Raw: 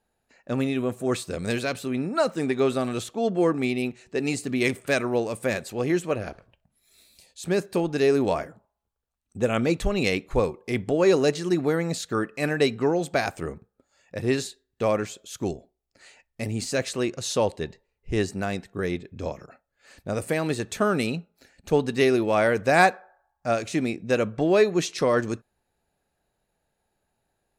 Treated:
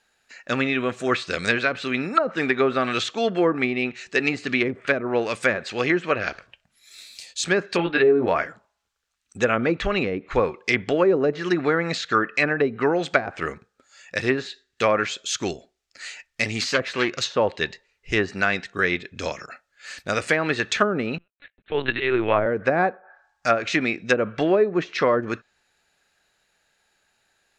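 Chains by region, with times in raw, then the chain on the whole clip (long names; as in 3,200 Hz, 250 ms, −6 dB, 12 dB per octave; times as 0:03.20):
0:07.77–0:08.28: elliptic low-pass filter 4,000 Hz, stop band 50 dB + double-tracking delay 17 ms −3 dB
0:16.47–0:17.24: phase distortion by the signal itself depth 0.14 ms + high-shelf EQ 5,100 Hz +4 dB
0:21.18–0:22.46: noise gate −56 dBFS, range −39 dB + volume swells 171 ms + linear-prediction vocoder at 8 kHz pitch kept
whole clip: flat-topped bell 3,100 Hz +11.5 dB 2.9 octaves; treble cut that deepens with the level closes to 520 Hz, closed at −14 dBFS; low-shelf EQ 260 Hz −8 dB; level +4 dB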